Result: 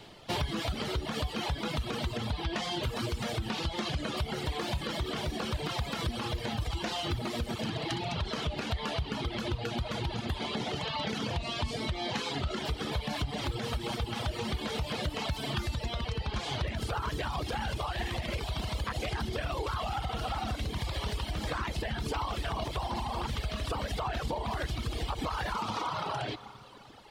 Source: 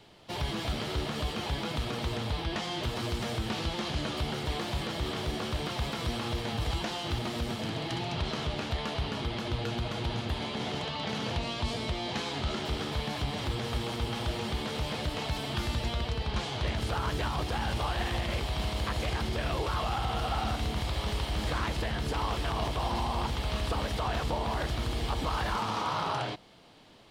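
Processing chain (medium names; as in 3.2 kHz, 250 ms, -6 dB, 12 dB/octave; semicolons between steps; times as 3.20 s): Schroeder reverb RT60 3.2 s, combs from 29 ms, DRR 11 dB; compression, threshold -33 dBFS, peak gain reduction 8 dB; reverb removal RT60 1.8 s; trim +6 dB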